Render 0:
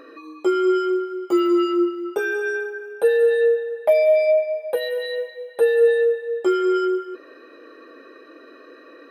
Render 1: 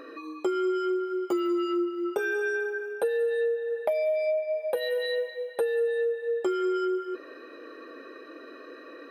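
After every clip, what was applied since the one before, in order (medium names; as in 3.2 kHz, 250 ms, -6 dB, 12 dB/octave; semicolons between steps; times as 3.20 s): compression 6:1, threshold -25 dBFS, peak gain reduction 12.5 dB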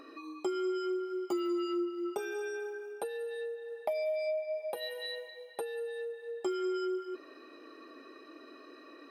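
graphic EQ with 31 bands 500 Hz -11 dB, 800 Hz +3 dB, 1.6 kHz -10 dB, 5 kHz +6 dB, 8 kHz +5 dB; trim -4.5 dB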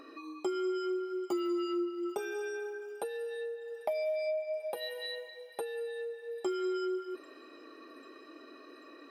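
feedback echo behind a high-pass 792 ms, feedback 67%, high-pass 2.8 kHz, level -21.5 dB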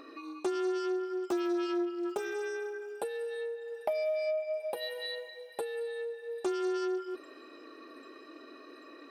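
loudspeaker Doppler distortion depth 0.15 ms; trim +1.5 dB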